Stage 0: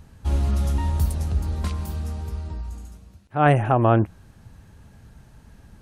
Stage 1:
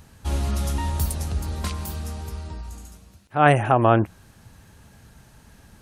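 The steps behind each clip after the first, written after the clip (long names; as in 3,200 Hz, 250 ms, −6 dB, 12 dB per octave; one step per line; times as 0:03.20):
spectral tilt +1.5 dB per octave
level +2.5 dB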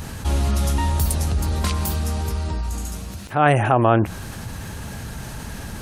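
envelope flattener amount 50%
level −1 dB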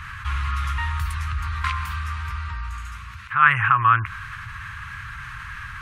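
drawn EQ curve 120 Hz 0 dB, 240 Hz −21 dB, 460 Hz −21 dB, 710 Hz −25 dB, 1,100 Hz +14 dB, 2,200 Hz +12 dB, 4,800 Hz −6 dB, 14,000 Hz −15 dB
level −5.5 dB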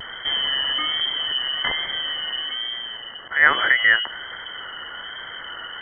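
voice inversion scrambler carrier 3,100 Hz
pitch vibrato 1.2 Hz 45 cents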